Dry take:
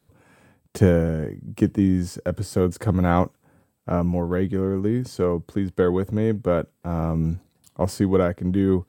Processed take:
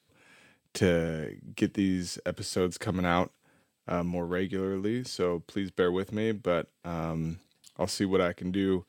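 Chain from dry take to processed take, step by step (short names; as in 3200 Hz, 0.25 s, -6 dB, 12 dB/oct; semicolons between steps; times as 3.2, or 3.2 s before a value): weighting filter D; gain -6 dB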